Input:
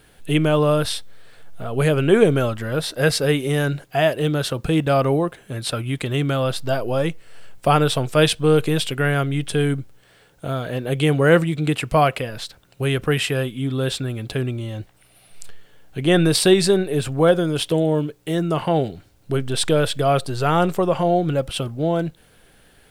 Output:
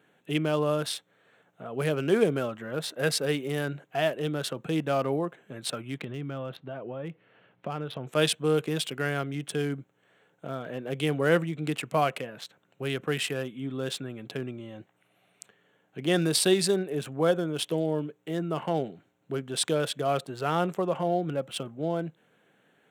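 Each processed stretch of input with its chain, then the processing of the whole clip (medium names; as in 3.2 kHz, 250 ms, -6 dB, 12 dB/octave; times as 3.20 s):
5.98–8.07 s: bass shelf 170 Hz +9 dB + compression 10:1, threshold -20 dBFS + low-pass 4 kHz 24 dB/octave
whole clip: local Wiener filter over 9 samples; high-pass 150 Hz 24 dB/octave; treble shelf 3.9 kHz +6 dB; trim -8.5 dB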